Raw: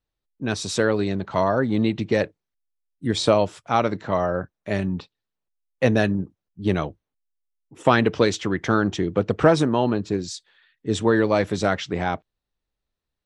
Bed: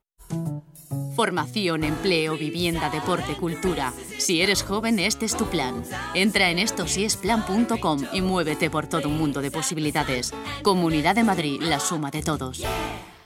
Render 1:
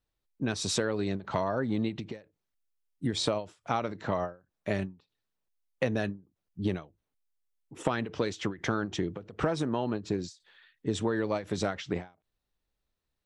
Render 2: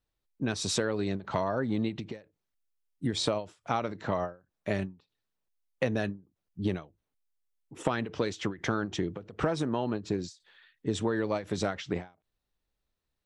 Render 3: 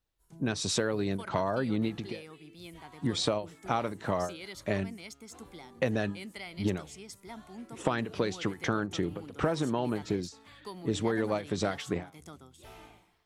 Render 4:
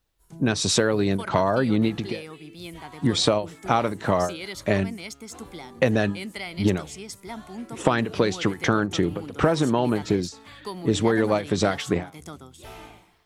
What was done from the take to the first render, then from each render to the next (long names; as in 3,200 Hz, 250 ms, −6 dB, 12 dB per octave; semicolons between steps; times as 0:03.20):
downward compressor 6 to 1, threshold −26 dBFS, peak gain reduction 14.5 dB; every ending faded ahead of time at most 200 dB per second
no processing that can be heard
mix in bed −23.5 dB
level +8.5 dB